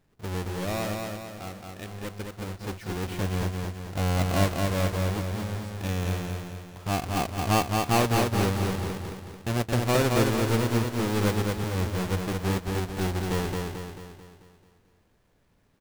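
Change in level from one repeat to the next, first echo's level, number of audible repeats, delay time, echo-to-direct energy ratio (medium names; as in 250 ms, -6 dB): -6.0 dB, -3.5 dB, 6, 220 ms, -2.5 dB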